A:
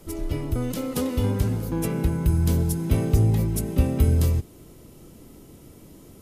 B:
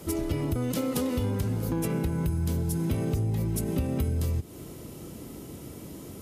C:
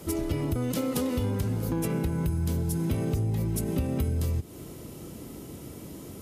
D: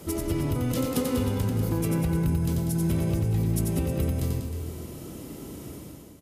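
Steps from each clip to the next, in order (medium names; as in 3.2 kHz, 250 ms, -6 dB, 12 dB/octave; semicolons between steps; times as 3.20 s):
high-pass 60 Hz 12 dB/octave; in parallel at -0.5 dB: peak limiter -21 dBFS, peak gain reduction 11.5 dB; on the sum: compression, threshold -25 dBFS, peak gain reduction 11.5 dB
no audible change
fade out at the end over 0.54 s; on a send: reverse bouncing-ball echo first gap 90 ms, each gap 1.15×, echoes 5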